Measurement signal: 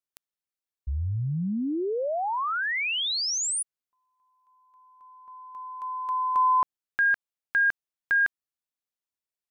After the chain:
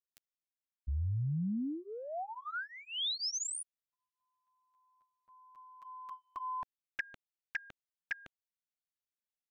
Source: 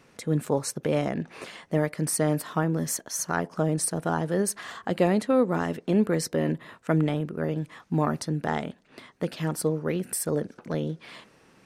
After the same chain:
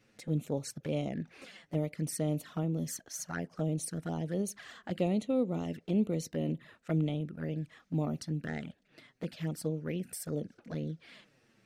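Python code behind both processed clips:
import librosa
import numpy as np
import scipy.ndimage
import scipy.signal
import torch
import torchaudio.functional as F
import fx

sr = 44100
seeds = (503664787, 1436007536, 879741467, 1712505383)

y = fx.graphic_eq_15(x, sr, hz=(400, 1000, 10000), db=(-4, -10, -5))
y = fx.env_flanger(y, sr, rest_ms=10.0, full_db=-24.5)
y = y * librosa.db_to_amplitude(-5.0)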